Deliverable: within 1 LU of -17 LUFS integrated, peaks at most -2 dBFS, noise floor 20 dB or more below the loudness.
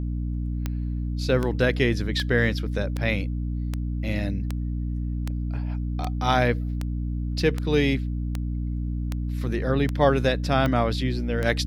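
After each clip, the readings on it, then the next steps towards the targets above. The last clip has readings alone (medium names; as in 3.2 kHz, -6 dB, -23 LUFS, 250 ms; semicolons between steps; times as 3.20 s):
clicks found 15; hum 60 Hz; highest harmonic 300 Hz; hum level -25 dBFS; loudness -25.5 LUFS; peak level -6.0 dBFS; loudness target -17.0 LUFS
-> de-click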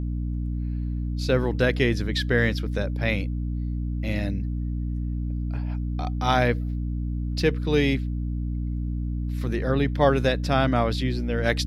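clicks found 0; hum 60 Hz; highest harmonic 300 Hz; hum level -25 dBFS
-> de-hum 60 Hz, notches 5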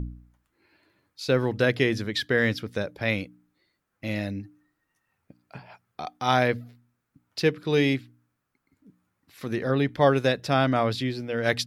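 hum not found; loudness -25.5 LUFS; peak level -6.5 dBFS; loudness target -17.0 LUFS
-> trim +8.5 dB; peak limiter -2 dBFS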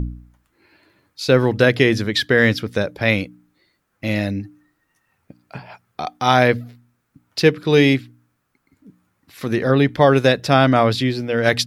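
loudness -17.5 LUFS; peak level -2.0 dBFS; noise floor -70 dBFS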